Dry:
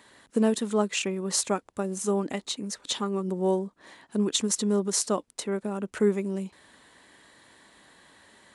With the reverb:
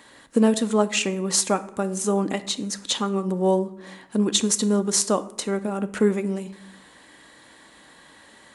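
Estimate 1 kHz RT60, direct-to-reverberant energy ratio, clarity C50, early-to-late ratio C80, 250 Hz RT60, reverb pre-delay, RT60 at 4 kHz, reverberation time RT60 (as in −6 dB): 0.70 s, 10.0 dB, 15.5 dB, 18.5 dB, 1.0 s, 4 ms, 0.50 s, 0.80 s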